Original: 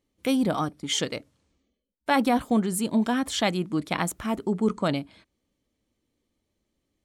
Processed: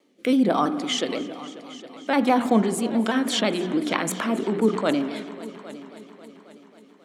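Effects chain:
high-pass filter 220 Hz 24 dB per octave
high-shelf EQ 6,000 Hz −10.5 dB
mains-hum notches 60/120/180/240/300/360/420 Hz
in parallel at −1 dB: compressor whose output falls as the input rises −44 dBFS, ratio −1
on the sum: rotating-speaker cabinet horn 1.1 Hz, later 7.5 Hz, at 0:02.78
on a send: echo machine with several playback heads 270 ms, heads all three, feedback 51%, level −20.5 dB
on the sum: spring reverb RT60 1.8 s, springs 43 ms, chirp 75 ms, DRR 12.5 dB
pitch modulation by a square or saw wave saw down 6.1 Hz, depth 100 cents
level +6 dB

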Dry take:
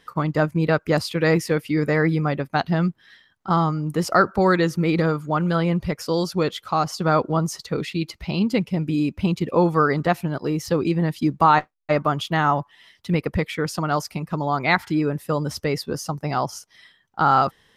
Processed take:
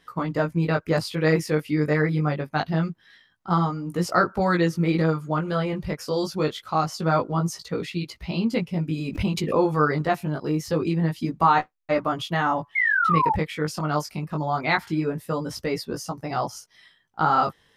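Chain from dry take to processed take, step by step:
0:12.75–0:13.34: sound drawn into the spectrogram fall 830–2,200 Hz −18 dBFS
chorus effect 0.25 Hz, delay 17 ms, depth 3 ms
0:08.97–0:09.78: background raised ahead of every attack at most 95 dB per second

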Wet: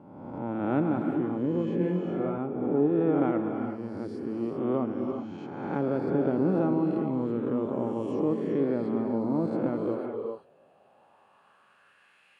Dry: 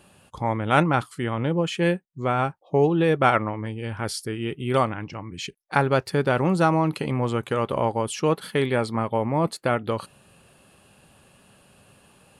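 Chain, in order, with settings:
peak hold with a rise ahead of every peak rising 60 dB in 1.26 s
reverb whose tail is shaped and stops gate 420 ms rising, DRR 5 dB
band-pass filter sweep 280 Hz → 2,100 Hz, 0:09.74–0:12.27
0:01.78–0:02.38: flutter between parallel walls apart 3.8 metres, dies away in 0.37 s

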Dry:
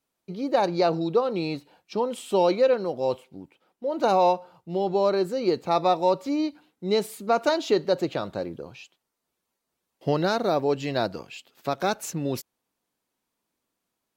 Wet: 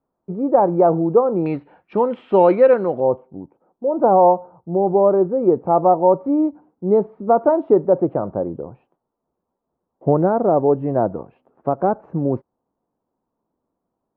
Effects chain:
low-pass filter 1,100 Hz 24 dB per octave, from 0:01.46 2,000 Hz, from 0:03.00 1,000 Hz
level +8 dB

